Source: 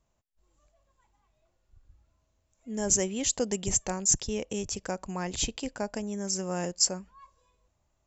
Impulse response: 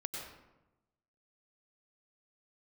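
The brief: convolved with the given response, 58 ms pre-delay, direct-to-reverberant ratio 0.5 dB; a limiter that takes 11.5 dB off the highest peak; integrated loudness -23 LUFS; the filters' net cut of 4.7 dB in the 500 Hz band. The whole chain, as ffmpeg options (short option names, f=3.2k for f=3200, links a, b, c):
-filter_complex "[0:a]equalizer=f=500:t=o:g=-6,alimiter=limit=-21.5dB:level=0:latency=1,asplit=2[a][b];[1:a]atrim=start_sample=2205,adelay=58[c];[b][c]afir=irnorm=-1:irlink=0,volume=-1dB[d];[a][d]amix=inputs=2:normalize=0,volume=8.5dB"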